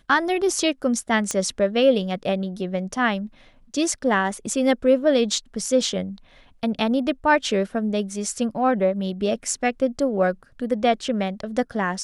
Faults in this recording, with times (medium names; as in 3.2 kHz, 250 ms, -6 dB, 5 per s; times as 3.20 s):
1.31 s: pop -10 dBFS